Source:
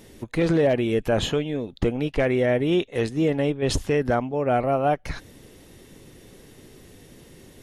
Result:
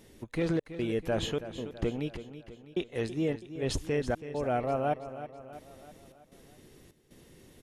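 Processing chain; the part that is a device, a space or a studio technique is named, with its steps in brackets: trance gate with a delay (step gate "xxx.xxx.xxx..." 76 bpm -60 dB; feedback echo 0.327 s, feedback 52%, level -12.5 dB); gain -8 dB

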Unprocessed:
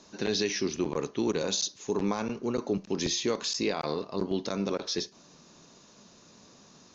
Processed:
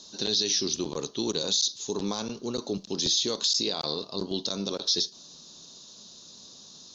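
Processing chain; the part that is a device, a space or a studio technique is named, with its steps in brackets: over-bright horn tweeter (resonant high shelf 2900 Hz +9 dB, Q 3; limiter -13 dBFS, peak gain reduction 9.5 dB); gain -2 dB

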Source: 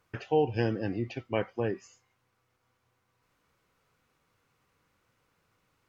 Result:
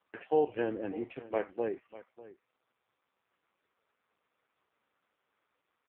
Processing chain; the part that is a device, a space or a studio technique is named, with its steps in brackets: satellite phone (BPF 320–3000 Hz; echo 0.596 s -17.5 dB; AMR-NB 4.75 kbps 8000 Hz)

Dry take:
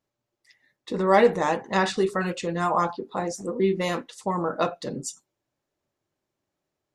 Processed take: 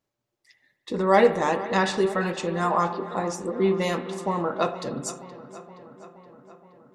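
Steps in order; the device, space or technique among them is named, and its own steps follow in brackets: dub delay into a spring reverb (darkening echo 0.472 s, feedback 68%, low-pass 4300 Hz, level -16 dB; spring tank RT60 1.6 s, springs 57 ms, chirp 20 ms, DRR 12.5 dB)

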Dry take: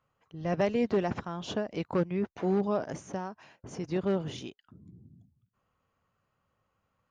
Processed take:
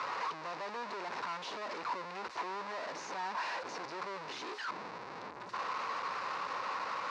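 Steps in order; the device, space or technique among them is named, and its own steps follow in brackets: home computer beeper (infinite clipping; speaker cabinet 520–4800 Hz, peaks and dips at 650 Hz -4 dB, 1000 Hz +8 dB, 3200 Hz -9 dB); gain -3.5 dB

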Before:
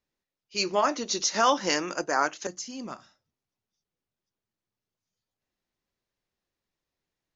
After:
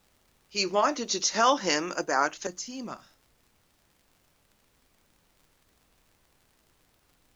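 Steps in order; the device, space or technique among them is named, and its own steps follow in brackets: vinyl LP (crackle; pink noise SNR 35 dB)

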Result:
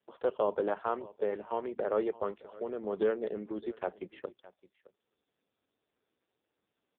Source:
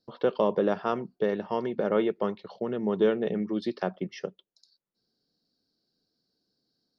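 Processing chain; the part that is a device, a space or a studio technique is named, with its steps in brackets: satellite phone (BPF 370–3300 Hz; echo 0.616 s -20 dB; gain -2.5 dB; AMR-NB 5.15 kbps 8000 Hz)

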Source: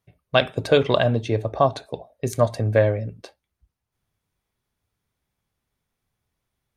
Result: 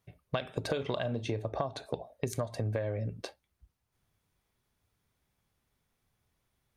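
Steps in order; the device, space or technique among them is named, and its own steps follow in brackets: 0.66–1.39 doubler 38 ms -14 dB; serial compression, leveller first (compressor 3:1, threshold -20 dBFS, peak gain reduction 7 dB; compressor 6:1, threshold -31 dBFS, peak gain reduction 13.5 dB); gain +1 dB

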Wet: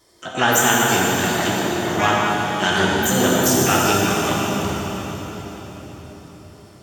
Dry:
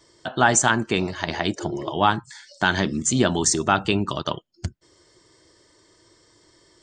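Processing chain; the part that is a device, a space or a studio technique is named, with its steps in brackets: shimmer-style reverb (harmoniser +12 st -5 dB; reverb RT60 5.0 s, pre-delay 13 ms, DRR -4.5 dB); gain -2.5 dB

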